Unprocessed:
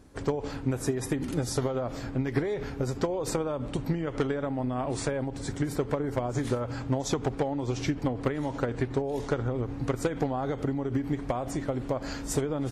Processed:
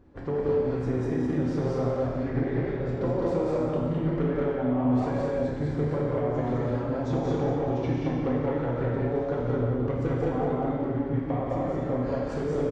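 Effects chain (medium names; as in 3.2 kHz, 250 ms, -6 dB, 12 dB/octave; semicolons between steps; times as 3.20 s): loudspeakers at several distances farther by 61 m -5 dB, 72 m -2 dB; in parallel at -0.5 dB: overload inside the chain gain 24.5 dB; on the sum: tape spacing loss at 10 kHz 34 dB; gated-style reverb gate 500 ms falling, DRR -3 dB; trim -8 dB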